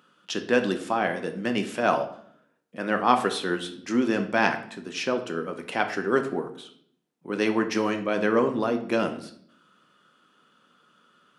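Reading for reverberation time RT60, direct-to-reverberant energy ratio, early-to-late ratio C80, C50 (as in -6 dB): 0.65 s, 5.5 dB, 14.0 dB, 10.5 dB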